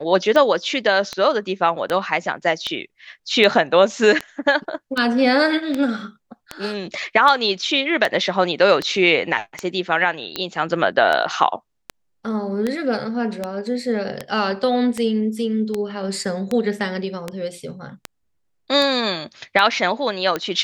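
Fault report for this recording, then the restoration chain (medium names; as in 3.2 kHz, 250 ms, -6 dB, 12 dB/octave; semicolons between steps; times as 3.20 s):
tick 78 rpm -9 dBFS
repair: de-click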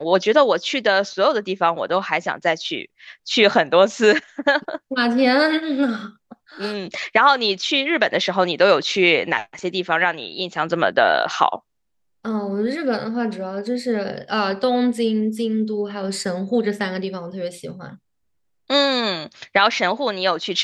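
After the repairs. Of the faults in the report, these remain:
nothing left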